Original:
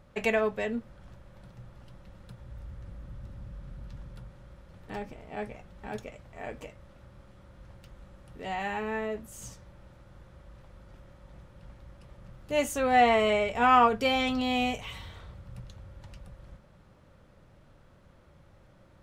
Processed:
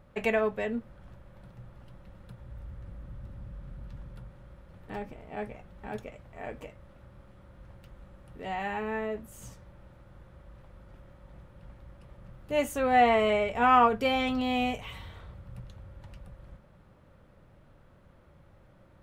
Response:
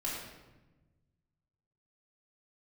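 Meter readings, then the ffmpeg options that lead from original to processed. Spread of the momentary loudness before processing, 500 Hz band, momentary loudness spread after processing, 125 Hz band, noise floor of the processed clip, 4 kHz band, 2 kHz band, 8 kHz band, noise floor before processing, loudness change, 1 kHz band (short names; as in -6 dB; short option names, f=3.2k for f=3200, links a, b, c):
24 LU, 0.0 dB, 24 LU, 0.0 dB, -58 dBFS, -3.0 dB, -1.5 dB, -5.5 dB, -58 dBFS, -0.5 dB, -0.5 dB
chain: -af "equalizer=f=5.9k:t=o:w=1.5:g=-7"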